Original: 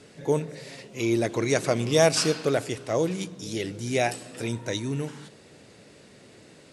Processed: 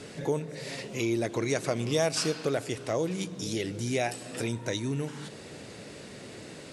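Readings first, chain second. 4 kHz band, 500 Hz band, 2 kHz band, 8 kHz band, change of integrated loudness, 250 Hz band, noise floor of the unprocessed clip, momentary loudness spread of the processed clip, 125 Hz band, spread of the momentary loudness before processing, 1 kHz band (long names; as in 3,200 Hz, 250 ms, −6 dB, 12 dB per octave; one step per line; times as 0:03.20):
−4.0 dB, −5.0 dB, −4.0 dB, −4.0 dB, −4.5 dB, −3.5 dB, −52 dBFS, 16 LU, −3.0 dB, 13 LU, −5.0 dB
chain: downward compressor 2 to 1, threshold −42 dBFS, peak gain reduction 15 dB
level +7 dB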